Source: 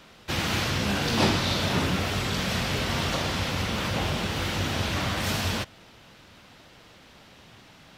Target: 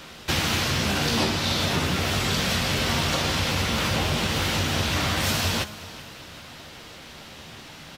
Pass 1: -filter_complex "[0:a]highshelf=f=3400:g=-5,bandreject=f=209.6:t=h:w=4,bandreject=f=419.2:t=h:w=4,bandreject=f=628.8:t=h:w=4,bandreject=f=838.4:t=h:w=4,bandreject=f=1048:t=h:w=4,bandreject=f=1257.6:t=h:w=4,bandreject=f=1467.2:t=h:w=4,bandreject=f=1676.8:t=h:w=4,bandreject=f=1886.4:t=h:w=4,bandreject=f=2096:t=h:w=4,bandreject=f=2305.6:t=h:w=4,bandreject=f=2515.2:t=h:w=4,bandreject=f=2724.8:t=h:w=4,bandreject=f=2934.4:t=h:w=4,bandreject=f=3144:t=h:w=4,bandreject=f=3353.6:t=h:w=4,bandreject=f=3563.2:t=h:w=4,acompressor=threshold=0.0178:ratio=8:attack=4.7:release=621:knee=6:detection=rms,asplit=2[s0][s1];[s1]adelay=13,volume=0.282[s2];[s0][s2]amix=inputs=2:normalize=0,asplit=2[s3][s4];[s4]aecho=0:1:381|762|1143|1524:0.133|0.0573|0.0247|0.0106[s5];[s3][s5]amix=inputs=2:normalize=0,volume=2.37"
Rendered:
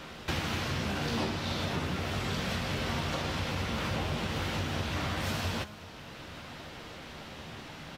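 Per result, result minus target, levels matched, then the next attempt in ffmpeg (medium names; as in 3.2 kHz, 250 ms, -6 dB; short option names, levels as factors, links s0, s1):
compression: peak gain reduction +7.5 dB; 8 kHz band -5.0 dB
-filter_complex "[0:a]highshelf=f=3400:g=-5,bandreject=f=209.6:t=h:w=4,bandreject=f=419.2:t=h:w=4,bandreject=f=628.8:t=h:w=4,bandreject=f=838.4:t=h:w=4,bandreject=f=1048:t=h:w=4,bandreject=f=1257.6:t=h:w=4,bandreject=f=1467.2:t=h:w=4,bandreject=f=1676.8:t=h:w=4,bandreject=f=1886.4:t=h:w=4,bandreject=f=2096:t=h:w=4,bandreject=f=2305.6:t=h:w=4,bandreject=f=2515.2:t=h:w=4,bandreject=f=2724.8:t=h:w=4,bandreject=f=2934.4:t=h:w=4,bandreject=f=3144:t=h:w=4,bandreject=f=3353.6:t=h:w=4,bandreject=f=3563.2:t=h:w=4,acompressor=threshold=0.0531:ratio=8:attack=4.7:release=621:knee=6:detection=rms,asplit=2[s0][s1];[s1]adelay=13,volume=0.282[s2];[s0][s2]amix=inputs=2:normalize=0,asplit=2[s3][s4];[s4]aecho=0:1:381|762|1143|1524:0.133|0.0573|0.0247|0.0106[s5];[s3][s5]amix=inputs=2:normalize=0,volume=2.37"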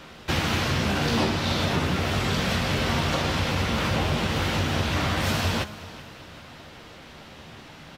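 8 kHz band -5.5 dB
-filter_complex "[0:a]highshelf=f=3400:g=4.5,bandreject=f=209.6:t=h:w=4,bandreject=f=419.2:t=h:w=4,bandreject=f=628.8:t=h:w=4,bandreject=f=838.4:t=h:w=4,bandreject=f=1048:t=h:w=4,bandreject=f=1257.6:t=h:w=4,bandreject=f=1467.2:t=h:w=4,bandreject=f=1676.8:t=h:w=4,bandreject=f=1886.4:t=h:w=4,bandreject=f=2096:t=h:w=4,bandreject=f=2305.6:t=h:w=4,bandreject=f=2515.2:t=h:w=4,bandreject=f=2724.8:t=h:w=4,bandreject=f=2934.4:t=h:w=4,bandreject=f=3144:t=h:w=4,bandreject=f=3353.6:t=h:w=4,bandreject=f=3563.2:t=h:w=4,acompressor=threshold=0.0531:ratio=8:attack=4.7:release=621:knee=6:detection=rms,asplit=2[s0][s1];[s1]adelay=13,volume=0.282[s2];[s0][s2]amix=inputs=2:normalize=0,asplit=2[s3][s4];[s4]aecho=0:1:381|762|1143|1524:0.133|0.0573|0.0247|0.0106[s5];[s3][s5]amix=inputs=2:normalize=0,volume=2.37"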